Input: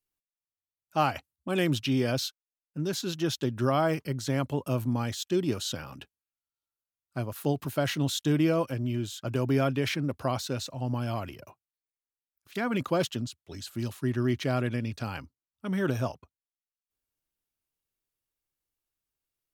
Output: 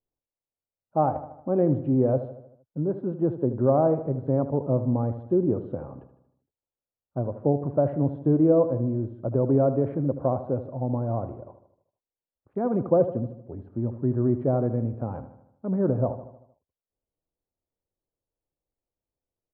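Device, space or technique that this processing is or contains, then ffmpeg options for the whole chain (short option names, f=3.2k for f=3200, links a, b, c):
under water: -filter_complex "[0:a]lowpass=f=880:w=0.5412,lowpass=f=880:w=1.3066,equalizer=f=520:t=o:w=0.45:g=6,asplit=2[a][b];[b]adelay=77,lowpass=f=4.4k:p=1,volume=-12dB,asplit=2[c][d];[d]adelay=77,lowpass=f=4.4k:p=1,volume=0.54,asplit=2[e][f];[f]adelay=77,lowpass=f=4.4k:p=1,volume=0.54,asplit=2[g][h];[h]adelay=77,lowpass=f=4.4k:p=1,volume=0.54,asplit=2[i][j];[j]adelay=77,lowpass=f=4.4k:p=1,volume=0.54,asplit=2[k][l];[l]adelay=77,lowpass=f=4.4k:p=1,volume=0.54[m];[a][c][e][g][i][k][m]amix=inputs=7:normalize=0,volume=3.5dB"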